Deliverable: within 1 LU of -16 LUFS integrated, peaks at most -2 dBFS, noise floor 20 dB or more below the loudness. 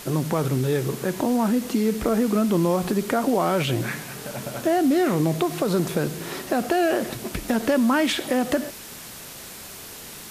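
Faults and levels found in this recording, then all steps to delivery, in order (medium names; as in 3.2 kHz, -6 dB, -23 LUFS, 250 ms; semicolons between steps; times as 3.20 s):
noise floor -40 dBFS; noise floor target -44 dBFS; loudness -23.5 LUFS; peak level -10.5 dBFS; loudness target -16.0 LUFS
-> noise reduction 6 dB, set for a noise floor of -40 dBFS; trim +7.5 dB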